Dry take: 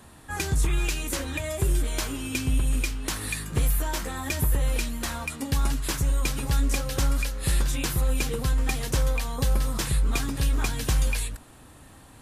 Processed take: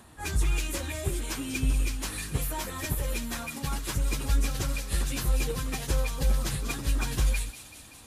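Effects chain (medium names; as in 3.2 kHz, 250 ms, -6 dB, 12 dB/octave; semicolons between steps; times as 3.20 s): plain phase-vocoder stretch 0.66×; feedback echo behind a high-pass 191 ms, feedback 73%, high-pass 2.7 kHz, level -10 dB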